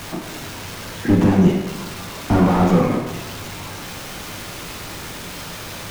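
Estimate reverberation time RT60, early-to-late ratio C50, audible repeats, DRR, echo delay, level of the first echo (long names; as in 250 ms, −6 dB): 1.1 s, 5.0 dB, no echo audible, 2.0 dB, no echo audible, no echo audible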